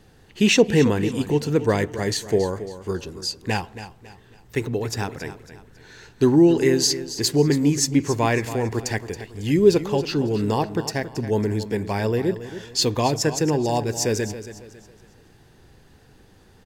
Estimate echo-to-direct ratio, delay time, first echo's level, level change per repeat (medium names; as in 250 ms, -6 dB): -12.5 dB, 275 ms, -13.0 dB, -9.0 dB